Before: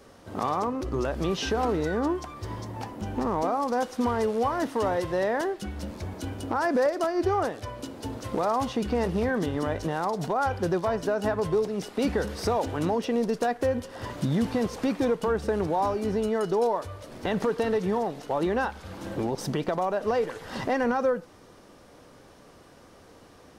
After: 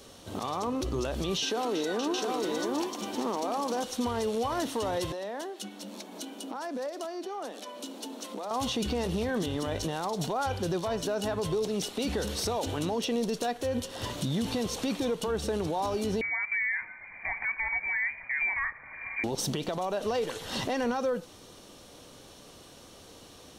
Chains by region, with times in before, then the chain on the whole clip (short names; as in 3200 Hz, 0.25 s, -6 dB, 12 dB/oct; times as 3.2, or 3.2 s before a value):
1.43–3.84 HPF 220 Hz 24 dB/oct + tapped delay 0.319/0.56/0.708 s -13.5/-8.5/-4 dB
5.12–8.51 compressor 2.5:1, threshold -36 dBFS + rippled Chebyshev high-pass 190 Hz, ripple 3 dB
16.21–19.24 brick-wall FIR high-pass 280 Hz + comb 1.1 ms, depth 46% + inverted band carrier 2700 Hz
whole clip: resonant high shelf 2500 Hz +8 dB, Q 1.5; notch 4900 Hz, Q 10; limiter -22 dBFS